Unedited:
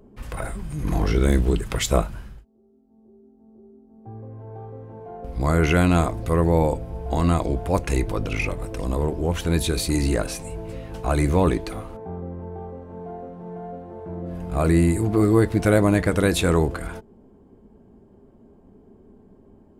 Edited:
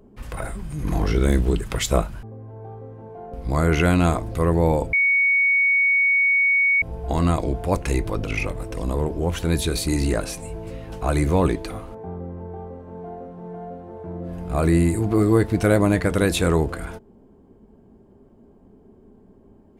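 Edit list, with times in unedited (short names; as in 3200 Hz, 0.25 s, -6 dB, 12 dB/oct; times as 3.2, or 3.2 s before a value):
2.23–4.14 cut
6.84 add tone 2230 Hz -15 dBFS 1.89 s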